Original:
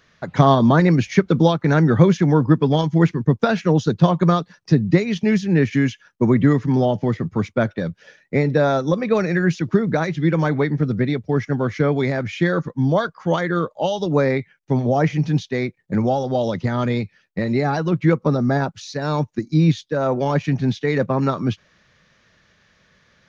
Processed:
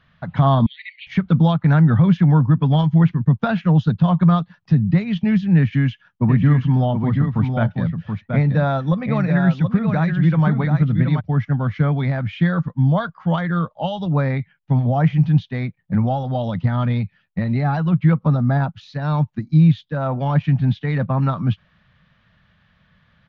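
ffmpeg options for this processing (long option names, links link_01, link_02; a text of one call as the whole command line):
ffmpeg -i in.wav -filter_complex "[0:a]asettb=1/sr,asplit=3[link_01][link_02][link_03];[link_01]atrim=end=0.664[link_04];[link_02]atrim=start=0.66:end=1.07,asetpts=PTS-STARTPTS,afade=type=in:duration=0.004:curve=qsin,afade=type=out:start_time=0.406:duration=0.004:curve=qsin,asuperpass=centerf=2900:order=20:qfactor=1.2[link_05];[link_03]atrim=start=1.066[link_06];[link_04][link_05]acrossfade=duration=0.004:curve1=hsin:curve2=qsin[link_07];[link_07][link_06]acrossfade=duration=0.004:curve1=qsin:curve2=hsin,asplit=3[link_08][link_09][link_10];[link_08]afade=type=out:start_time=6.28:duration=0.02[link_11];[link_09]aecho=1:1:728:0.501,afade=type=in:start_time=6.28:duration=0.02,afade=type=out:start_time=11.19:duration=0.02[link_12];[link_10]afade=type=in:start_time=11.19:duration=0.02[link_13];[link_11][link_12][link_13]amix=inputs=3:normalize=0,firequalizer=gain_entry='entry(170,0);entry(370,-18);entry(700,-6);entry(1300,-6);entry(2200,-10);entry(3100,-6);entry(6000,-26)':delay=0.05:min_phase=1,alimiter=level_in=10.5dB:limit=-1dB:release=50:level=0:latency=1,volume=-5.5dB" out.wav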